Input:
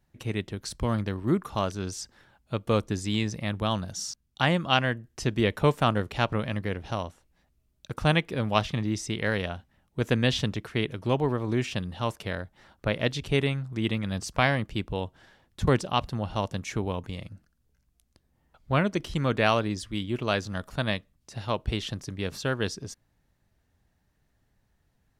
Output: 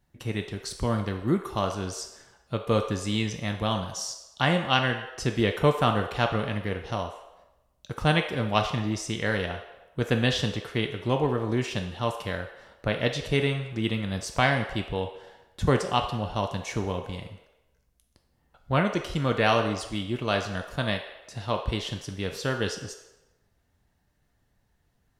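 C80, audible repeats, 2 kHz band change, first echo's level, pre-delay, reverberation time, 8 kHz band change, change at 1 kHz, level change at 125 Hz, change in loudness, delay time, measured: 10.5 dB, no echo, +1.0 dB, no echo, 3 ms, 1.0 s, +1.0 dB, +1.5 dB, 0.0 dB, +0.5 dB, no echo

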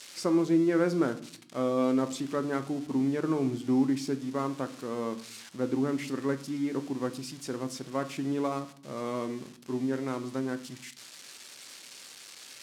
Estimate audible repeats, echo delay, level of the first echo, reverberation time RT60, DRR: no echo, no echo, no echo, 0.55 s, 9.0 dB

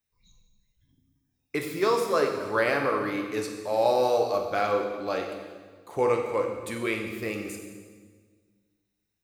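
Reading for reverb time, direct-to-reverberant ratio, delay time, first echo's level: 1.6 s, 2.5 dB, no echo, no echo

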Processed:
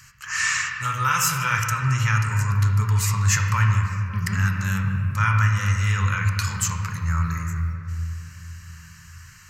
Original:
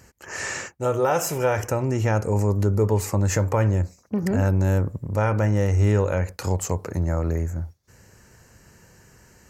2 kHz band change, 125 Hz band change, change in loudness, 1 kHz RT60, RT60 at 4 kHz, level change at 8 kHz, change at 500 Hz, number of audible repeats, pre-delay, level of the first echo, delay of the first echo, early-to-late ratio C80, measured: +9.0 dB, +1.5 dB, +1.0 dB, 2.4 s, 1.5 s, +6.5 dB, -22.0 dB, no echo, 3 ms, no echo, no echo, 4.0 dB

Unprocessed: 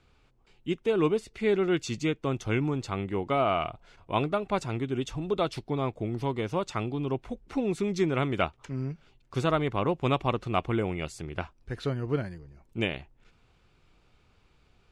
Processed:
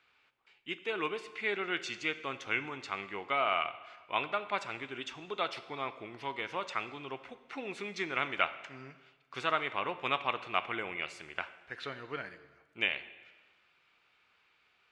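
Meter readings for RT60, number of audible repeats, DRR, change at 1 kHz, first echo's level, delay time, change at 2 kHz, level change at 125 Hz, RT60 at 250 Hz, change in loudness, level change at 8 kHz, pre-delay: 1.3 s, no echo, 11.5 dB, -3.0 dB, no echo, no echo, +3.0 dB, -21.5 dB, 1.4 s, -5.5 dB, -8.0 dB, 5 ms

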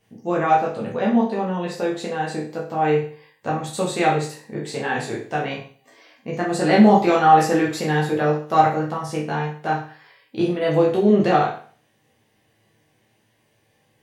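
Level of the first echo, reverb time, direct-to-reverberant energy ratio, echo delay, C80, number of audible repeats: no echo, 0.45 s, -4.5 dB, no echo, 11.0 dB, no echo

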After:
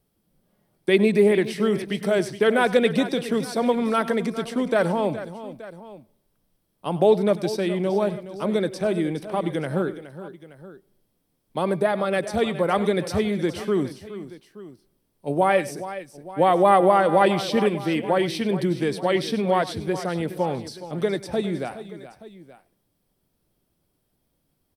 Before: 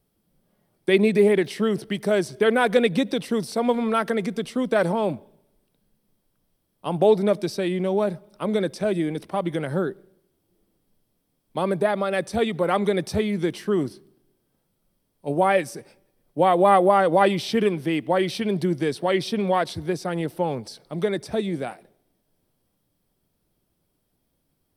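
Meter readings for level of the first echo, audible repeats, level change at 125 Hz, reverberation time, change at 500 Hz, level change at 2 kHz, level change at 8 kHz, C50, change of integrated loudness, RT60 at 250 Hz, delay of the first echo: -17.0 dB, 3, +0.5 dB, no reverb, +0.5 dB, +0.5 dB, +0.5 dB, no reverb, 0.0 dB, no reverb, 98 ms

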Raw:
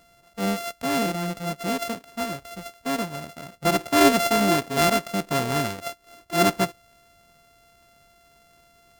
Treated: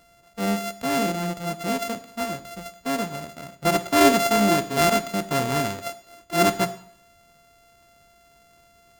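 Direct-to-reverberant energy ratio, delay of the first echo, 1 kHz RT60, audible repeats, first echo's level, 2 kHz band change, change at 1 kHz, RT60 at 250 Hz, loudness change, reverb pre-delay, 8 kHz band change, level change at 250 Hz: 11.0 dB, no echo, 0.65 s, no echo, no echo, +0.5 dB, +1.0 dB, 0.60 s, +0.5 dB, 15 ms, +1.0 dB, +0.5 dB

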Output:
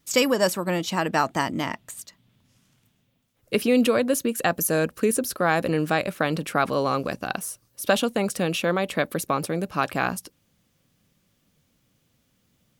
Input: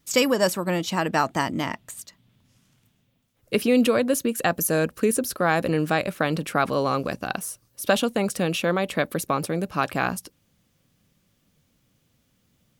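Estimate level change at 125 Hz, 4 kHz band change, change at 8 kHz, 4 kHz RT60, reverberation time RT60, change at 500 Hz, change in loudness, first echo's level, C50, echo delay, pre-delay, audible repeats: -1.0 dB, 0.0 dB, 0.0 dB, no reverb, no reverb, 0.0 dB, -0.5 dB, no echo, no reverb, no echo, no reverb, no echo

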